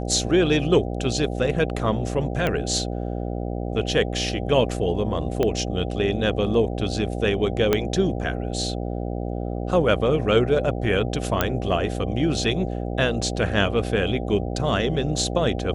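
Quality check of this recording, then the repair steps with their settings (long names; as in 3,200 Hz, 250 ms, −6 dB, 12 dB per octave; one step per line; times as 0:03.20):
mains buzz 60 Hz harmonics 13 −28 dBFS
0:02.47: click −11 dBFS
0:05.43: click −10 dBFS
0:07.73: click −5 dBFS
0:11.41: click −5 dBFS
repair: click removal
hum removal 60 Hz, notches 13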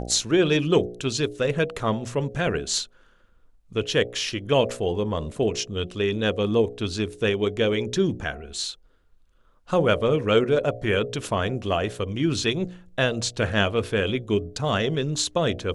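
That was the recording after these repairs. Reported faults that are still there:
0:05.43: click
0:07.73: click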